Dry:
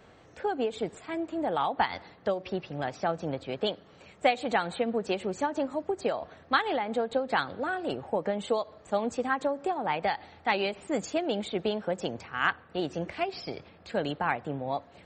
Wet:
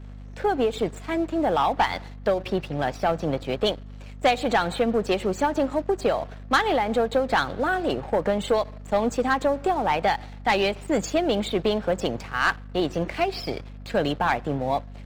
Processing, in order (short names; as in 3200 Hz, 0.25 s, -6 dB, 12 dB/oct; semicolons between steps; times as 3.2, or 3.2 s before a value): sample leveller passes 2; hum 50 Hz, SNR 15 dB